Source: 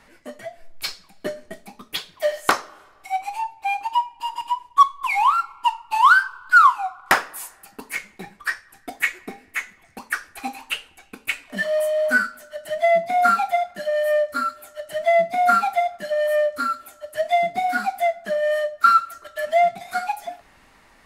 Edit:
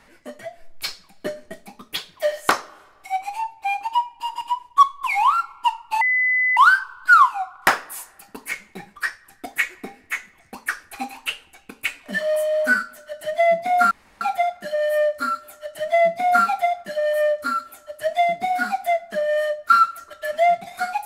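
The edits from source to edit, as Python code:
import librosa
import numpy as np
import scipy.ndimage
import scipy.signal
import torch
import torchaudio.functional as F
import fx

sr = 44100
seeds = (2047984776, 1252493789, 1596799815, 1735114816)

y = fx.edit(x, sr, fx.insert_tone(at_s=6.01, length_s=0.56, hz=2010.0, db=-16.0),
    fx.insert_room_tone(at_s=13.35, length_s=0.3), tone=tone)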